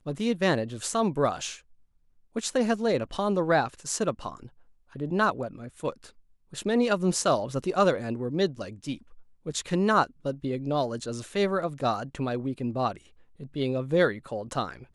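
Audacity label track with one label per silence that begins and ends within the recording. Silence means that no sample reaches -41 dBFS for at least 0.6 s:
1.570000	2.360000	silence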